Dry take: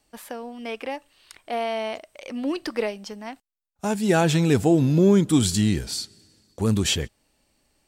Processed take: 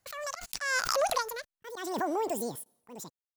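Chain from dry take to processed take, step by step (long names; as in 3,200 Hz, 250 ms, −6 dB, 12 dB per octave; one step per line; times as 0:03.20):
source passing by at 0:01.79, 17 m/s, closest 4.9 metres
noise gate −56 dBFS, range −43 dB
parametric band 2,400 Hz +3 dB 1.2 octaves
in parallel at +1 dB: downward compressor, threshold −42 dBFS, peak gain reduction 16 dB
on the sum: wrong playback speed 33 rpm record played at 78 rpm
volume swells 287 ms
background raised ahead of every attack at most 43 dB per second
level +4 dB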